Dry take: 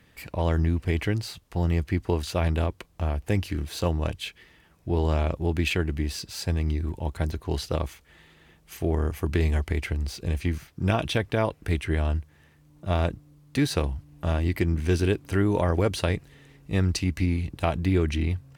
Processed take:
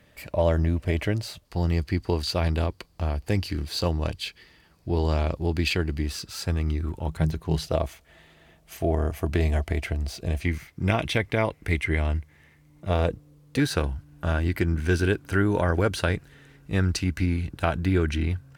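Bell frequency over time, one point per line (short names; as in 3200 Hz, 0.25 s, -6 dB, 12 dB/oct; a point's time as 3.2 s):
bell +12 dB 0.23 oct
600 Hz
from 1.45 s 4600 Hz
from 6.06 s 1300 Hz
from 7.08 s 160 Hz
from 7.67 s 660 Hz
from 10.45 s 2100 Hz
from 12.89 s 480 Hz
from 13.6 s 1500 Hz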